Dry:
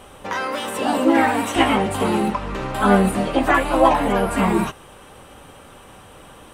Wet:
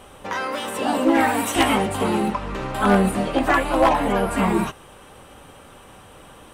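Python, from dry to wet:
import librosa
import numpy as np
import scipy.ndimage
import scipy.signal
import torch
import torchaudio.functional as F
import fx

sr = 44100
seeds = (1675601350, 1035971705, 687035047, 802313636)

y = np.minimum(x, 2.0 * 10.0 ** (-8.0 / 20.0) - x)
y = fx.high_shelf(y, sr, hz=fx.line((1.19, 10000.0), (1.85, 5800.0)), db=11.5, at=(1.19, 1.85), fade=0.02)
y = y * 10.0 ** (-1.5 / 20.0)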